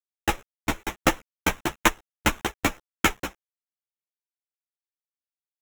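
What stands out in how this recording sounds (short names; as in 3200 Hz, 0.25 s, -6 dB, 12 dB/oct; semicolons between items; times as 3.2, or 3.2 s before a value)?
a quantiser's noise floor 8-bit, dither none; tremolo saw up 1.6 Hz, depth 50%; aliases and images of a low sample rate 4600 Hz, jitter 0%; a shimmering, thickened sound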